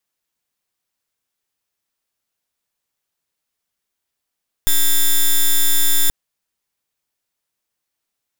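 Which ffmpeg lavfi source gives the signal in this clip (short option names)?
-f lavfi -i "aevalsrc='0.237*(2*lt(mod(3540*t,1),0.06)-1)':d=1.43:s=44100"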